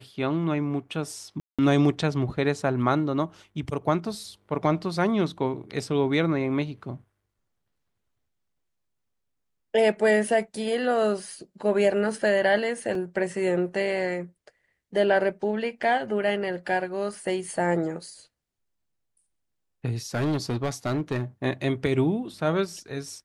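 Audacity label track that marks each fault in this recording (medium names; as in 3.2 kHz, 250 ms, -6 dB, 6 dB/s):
1.400000	1.590000	dropout 186 ms
12.950000	12.950000	dropout 2.4 ms
20.140000	21.230000	clipped -21.5 dBFS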